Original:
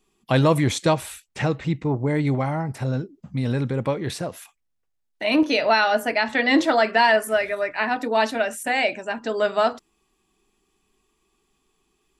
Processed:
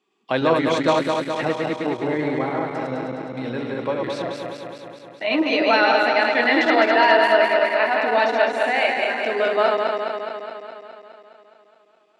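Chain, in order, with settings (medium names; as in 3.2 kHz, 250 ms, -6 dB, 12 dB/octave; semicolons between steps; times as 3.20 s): backward echo that repeats 104 ms, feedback 81%, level -3 dB; band-pass 300–3900 Hz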